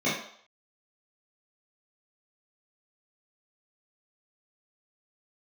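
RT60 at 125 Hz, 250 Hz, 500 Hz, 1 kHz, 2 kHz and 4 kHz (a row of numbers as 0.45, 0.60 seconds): 0.35, 0.45, 0.60, 0.65, 0.55, 0.60 seconds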